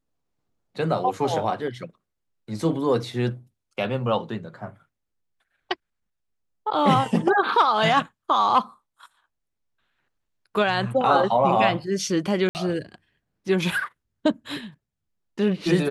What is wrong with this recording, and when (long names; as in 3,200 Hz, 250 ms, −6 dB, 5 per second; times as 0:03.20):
0:12.49–0:12.55: drop-out 59 ms